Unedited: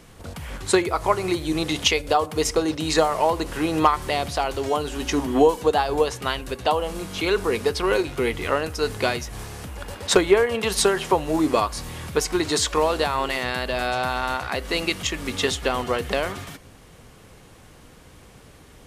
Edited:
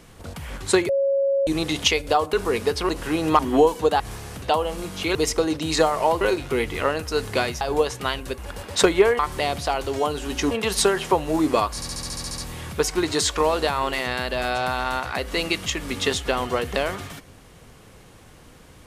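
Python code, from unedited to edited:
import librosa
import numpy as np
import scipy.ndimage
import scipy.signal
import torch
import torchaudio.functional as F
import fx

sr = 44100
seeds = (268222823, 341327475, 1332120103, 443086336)

y = fx.edit(x, sr, fx.bleep(start_s=0.89, length_s=0.58, hz=551.0, db=-17.5),
    fx.swap(start_s=2.33, length_s=1.06, other_s=7.32, other_length_s=0.56),
    fx.move(start_s=3.89, length_s=1.32, to_s=10.51),
    fx.swap(start_s=5.82, length_s=0.77, other_s=9.28, other_length_s=0.42),
    fx.stutter(start_s=11.75, slice_s=0.07, count=10), tone=tone)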